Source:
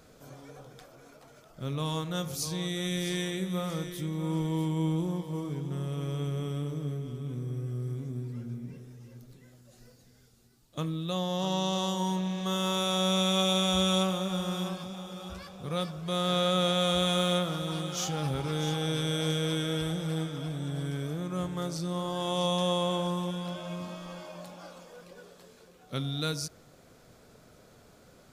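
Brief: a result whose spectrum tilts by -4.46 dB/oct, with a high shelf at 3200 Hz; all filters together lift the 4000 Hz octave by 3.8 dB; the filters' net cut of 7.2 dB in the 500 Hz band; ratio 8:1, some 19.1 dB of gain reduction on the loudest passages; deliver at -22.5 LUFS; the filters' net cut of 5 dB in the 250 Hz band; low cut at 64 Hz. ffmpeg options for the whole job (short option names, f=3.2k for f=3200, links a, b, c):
-af "highpass=64,equalizer=f=250:t=o:g=-7.5,equalizer=f=500:t=o:g=-6.5,highshelf=f=3.2k:g=-6.5,equalizer=f=4k:t=o:g=9,acompressor=threshold=-44dB:ratio=8,volume=23.5dB"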